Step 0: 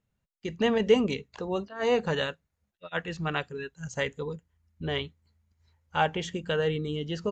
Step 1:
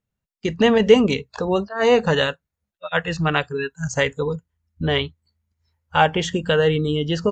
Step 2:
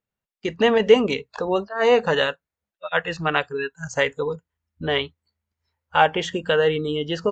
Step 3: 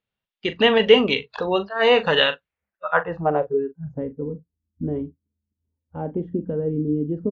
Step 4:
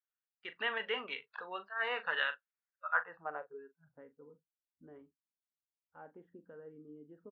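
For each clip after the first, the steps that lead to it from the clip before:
spectral noise reduction 16 dB; in parallel at -2 dB: compression, threshold -34 dBFS, peak gain reduction 17.5 dB; on the sum: trim +7.5 dB
tone controls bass -10 dB, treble -6 dB
doubling 40 ms -12 dB; low-pass sweep 3.4 kHz -> 270 Hz, 2.39–3.79 s
band-pass filter 1.5 kHz, Q 2.6; trim -8 dB

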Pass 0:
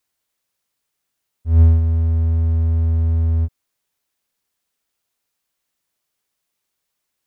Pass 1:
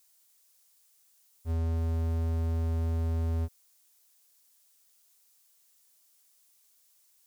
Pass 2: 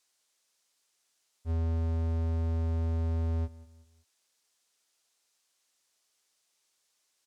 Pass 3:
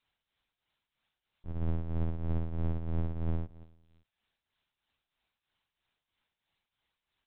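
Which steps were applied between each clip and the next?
tone controls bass -12 dB, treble +13 dB; peak limiter -22.5 dBFS, peak gain reduction 9 dB
distance through air 68 m; feedback delay 187 ms, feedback 38%, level -19 dB
LPC vocoder at 8 kHz pitch kept; tremolo triangle 3.1 Hz, depth 70%; trim +1.5 dB

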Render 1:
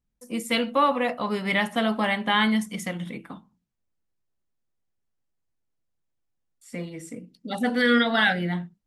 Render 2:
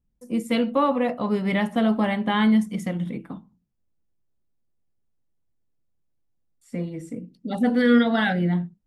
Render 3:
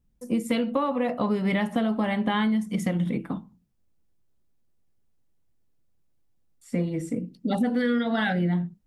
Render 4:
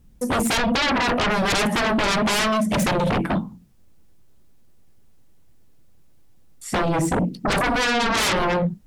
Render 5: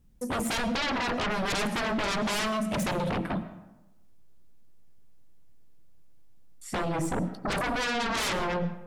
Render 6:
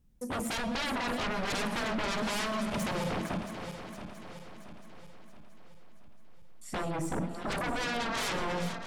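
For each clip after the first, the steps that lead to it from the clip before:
tilt shelf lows +6.5 dB, about 730 Hz
compression 12:1, threshold -26 dBFS, peak gain reduction 13.5 dB; trim +5 dB
sine folder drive 18 dB, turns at -12 dBFS; trim -5.5 dB
reverberation RT60 1.0 s, pre-delay 70 ms, DRR 13.5 dB; trim -8.5 dB
backward echo that repeats 338 ms, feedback 69%, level -9 dB; trim -4.5 dB

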